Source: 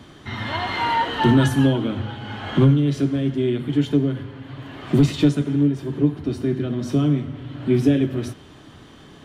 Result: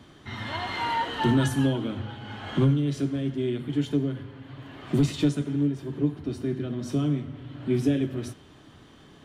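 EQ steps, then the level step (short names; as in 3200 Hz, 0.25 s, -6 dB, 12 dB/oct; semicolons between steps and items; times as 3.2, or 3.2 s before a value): dynamic EQ 8400 Hz, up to +5 dB, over -48 dBFS, Q 0.79; -6.5 dB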